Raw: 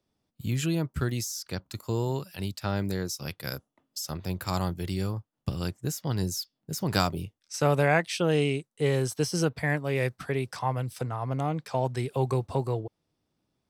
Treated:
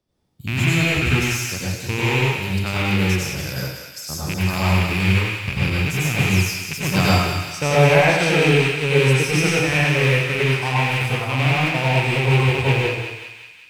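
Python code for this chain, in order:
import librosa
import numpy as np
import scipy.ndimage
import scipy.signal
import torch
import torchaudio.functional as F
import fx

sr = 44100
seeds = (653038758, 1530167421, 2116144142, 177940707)

p1 = fx.rattle_buzz(x, sr, strikes_db=-30.0, level_db=-15.0)
p2 = fx.low_shelf(p1, sr, hz=110.0, db=5.5)
p3 = p2 + fx.echo_thinned(p2, sr, ms=185, feedback_pct=65, hz=1100.0, wet_db=-7, dry=0)
y = fx.rev_plate(p3, sr, seeds[0], rt60_s=0.84, hf_ratio=0.85, predelay_ms=80, drr_db=-6.0)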